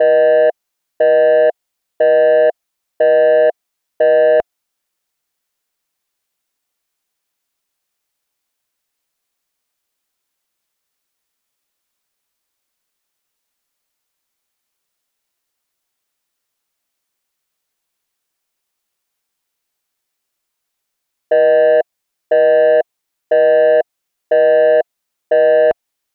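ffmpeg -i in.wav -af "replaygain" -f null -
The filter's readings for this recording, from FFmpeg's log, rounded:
track_gain = -4.8 dB
track_peak = 0.338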